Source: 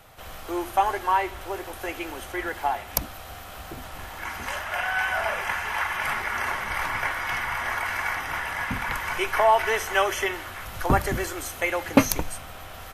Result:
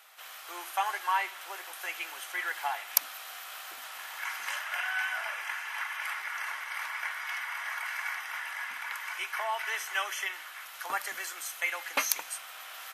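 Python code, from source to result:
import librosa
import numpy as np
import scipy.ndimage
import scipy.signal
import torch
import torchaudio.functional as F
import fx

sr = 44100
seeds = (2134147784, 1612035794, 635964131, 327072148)

y = scipy.signal.sosfilt(scipy.signal.butter(2, 1300.0, 'highpass', fs=sr, output='sos'), x)
y = fx.rider(y, sr, range_db=10, speed_s=2.0)
y = y * 10.0 ** (-5.0 / 20.0)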